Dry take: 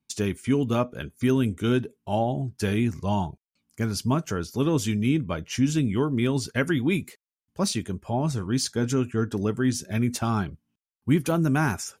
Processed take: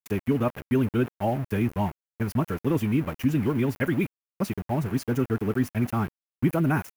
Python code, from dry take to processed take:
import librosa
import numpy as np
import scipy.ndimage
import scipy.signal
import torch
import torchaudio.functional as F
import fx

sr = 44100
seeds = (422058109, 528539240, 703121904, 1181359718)

y = fx.stretch_vocoder(x, sr, factor=0.58)
y = np.where(np.abs(y) >= 10.0 ** (-33.5 / 20.0), y, 0.0)
y = fx.band_shelf(y, sr, hz=5500.0, db=-11.5, octaves=1.7)